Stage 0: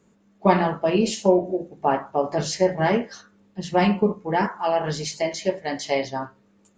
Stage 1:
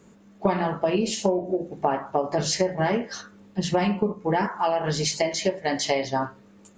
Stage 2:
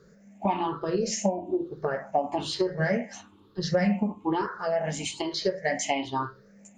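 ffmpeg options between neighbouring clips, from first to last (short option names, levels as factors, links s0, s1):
-af "acompressor=threshold=0.0398:ratio=6,volume=2.37"
-af "afftfilt=real='re*pow(10,18/40*sin(2*PI*(0.59*log(max(b,1)*sr/1024/100)/log(2)-(1.1)*(pts-256)/sr)))':imag='im*pow(10,18/40*sin(2*PI*(0.59*log(max(b,1)*sr/1024/100)/log(2)-(1.1)*(pts-256)/sr)))':win_size=1024:overlap=0.75,volume=0.473"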